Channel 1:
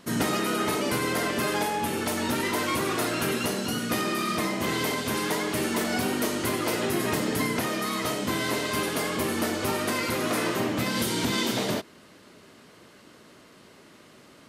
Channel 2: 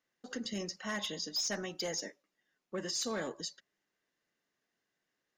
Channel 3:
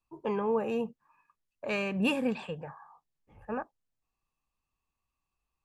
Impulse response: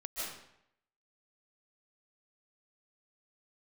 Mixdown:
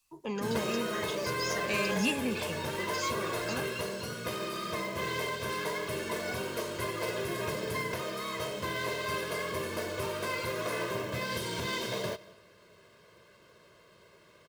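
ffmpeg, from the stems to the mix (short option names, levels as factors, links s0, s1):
-filter_complex "[0:a]highshelf=f=7600:g=-9.5,aecho=1:1:1.9:0.78,acrusher=bits=4:mode=log:mix=0:aa=0.000001,adelay=350,volume=0.376,asplit=2[s0][s1];[s1]volume=0.0944[s2];[1:a]adelay=50,volume=0.631[s3];[2:a]equalizer=f=8100:w=0.3:g=9,acrossover=split=330[s4][s5];[s5]acompressor=threshold=0.00158:ratio=1.5[s6];[s4][s6]amix=inputs=2:normalize=0,highshelf=f=2000:g=12,volume=0.891[s7];[3:a]atrim=start_sample=2205[s8];[s2][s8]afir=irnorm=-1:irlink=0[s9];[s0][s3][s7][s9]amix=inputs=4:normalize=0"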